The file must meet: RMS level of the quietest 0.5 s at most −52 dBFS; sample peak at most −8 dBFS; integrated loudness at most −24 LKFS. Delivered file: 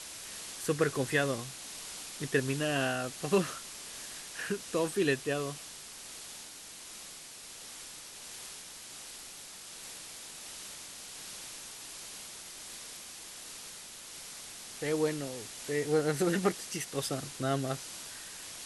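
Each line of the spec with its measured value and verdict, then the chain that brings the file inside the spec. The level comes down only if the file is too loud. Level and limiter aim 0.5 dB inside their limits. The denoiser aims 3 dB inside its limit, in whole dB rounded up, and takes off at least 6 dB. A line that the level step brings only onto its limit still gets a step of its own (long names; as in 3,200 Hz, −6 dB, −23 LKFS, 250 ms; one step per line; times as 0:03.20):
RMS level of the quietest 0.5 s −48 dBFS: out of spec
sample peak −15.0 dBFS: in spec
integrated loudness −35.5 LKFS: in spec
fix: broadband denoise 7 dB, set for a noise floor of −48 dBFS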